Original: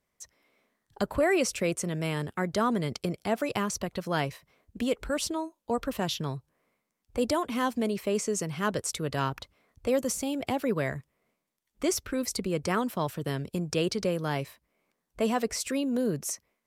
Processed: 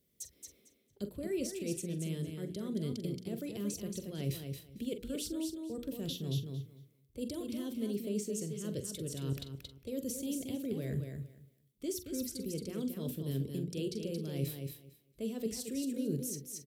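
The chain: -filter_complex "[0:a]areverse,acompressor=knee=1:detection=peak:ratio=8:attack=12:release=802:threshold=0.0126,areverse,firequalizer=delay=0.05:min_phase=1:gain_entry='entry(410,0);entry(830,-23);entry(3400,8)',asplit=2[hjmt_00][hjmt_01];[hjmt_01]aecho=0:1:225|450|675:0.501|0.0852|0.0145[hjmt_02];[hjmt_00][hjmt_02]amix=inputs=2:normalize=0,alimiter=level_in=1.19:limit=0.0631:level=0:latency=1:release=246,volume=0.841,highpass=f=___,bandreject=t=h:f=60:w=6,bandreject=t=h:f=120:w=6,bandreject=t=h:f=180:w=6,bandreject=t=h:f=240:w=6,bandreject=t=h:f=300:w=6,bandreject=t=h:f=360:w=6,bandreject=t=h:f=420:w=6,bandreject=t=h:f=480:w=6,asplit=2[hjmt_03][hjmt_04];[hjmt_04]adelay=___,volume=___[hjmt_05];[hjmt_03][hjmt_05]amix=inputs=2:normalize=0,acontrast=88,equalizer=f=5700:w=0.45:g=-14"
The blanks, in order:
51, 44, 0.266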